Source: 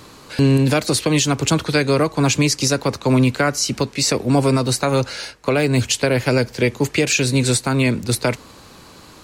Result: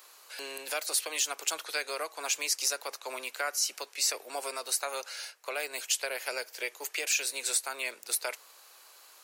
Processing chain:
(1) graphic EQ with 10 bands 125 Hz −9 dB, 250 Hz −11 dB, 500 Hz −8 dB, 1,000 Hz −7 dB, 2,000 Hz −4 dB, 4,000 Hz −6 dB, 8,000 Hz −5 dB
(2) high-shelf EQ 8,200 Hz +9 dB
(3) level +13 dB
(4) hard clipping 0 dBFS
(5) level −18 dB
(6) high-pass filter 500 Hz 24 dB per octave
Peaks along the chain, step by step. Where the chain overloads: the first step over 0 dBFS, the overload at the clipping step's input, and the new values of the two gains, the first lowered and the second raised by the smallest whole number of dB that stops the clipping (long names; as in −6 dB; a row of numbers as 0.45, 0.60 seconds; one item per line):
−12.0, −8.0, +5.0, 0.0, −18.0, −16.5 dBFS
step 3, 5.0 dB
step 3 +8 dB, step 5 −13 dB